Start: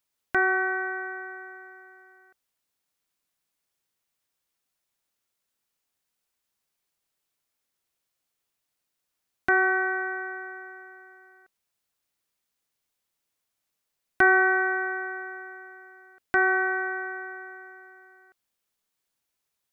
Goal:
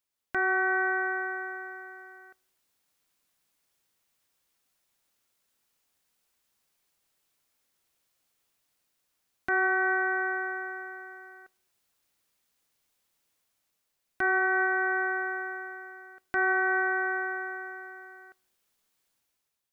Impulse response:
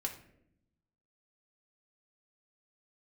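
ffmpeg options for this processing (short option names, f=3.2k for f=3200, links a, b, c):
-filter_complex "[0:a]dynaudnorm=f=180:g=7:m=10dB,alimiter=limit=-13.5dB:level=0:latency=1:release=335,asplit=2[a][b];[1:a]atrim=start_sample=2205[c];[b][c]afir=irnorm=-1:irlink=0,volume=-18dB[d];[a][d]amix=inputs=2:normalize=0,volume=-5.5dB"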